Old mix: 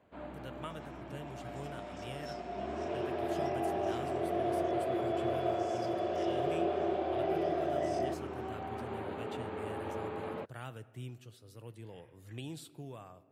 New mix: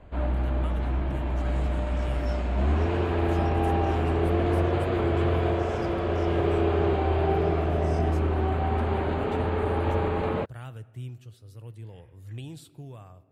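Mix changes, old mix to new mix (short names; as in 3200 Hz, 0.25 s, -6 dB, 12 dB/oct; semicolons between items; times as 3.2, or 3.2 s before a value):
first sound +11.5 dB; master: remove HPF 180 Hz 12 dB/oct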